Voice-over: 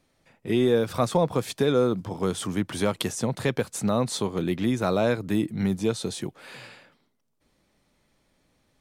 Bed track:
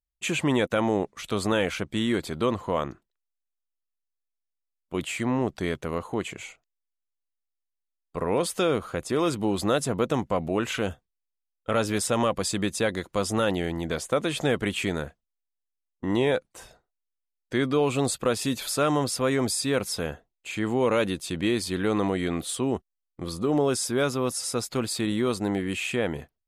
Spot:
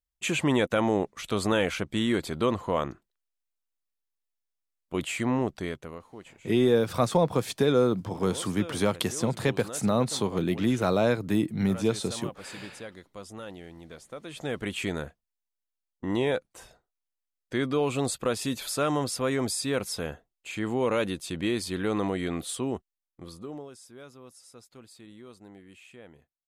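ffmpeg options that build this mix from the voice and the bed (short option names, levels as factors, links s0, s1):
-filter_complex "[0:a]adelay=6000,volume=0.944[s0];[1:a]volume=4.47,afade=t=out:st=5.34:d=0.7:silence=0.158489,afade=t=in:st=14.22:d=0.63:silence=0.211349,afade=t=out:st=22.52:d=1.18:silence=0.105925[s1];[s0][s1]amix=inputs=2:normalize=0"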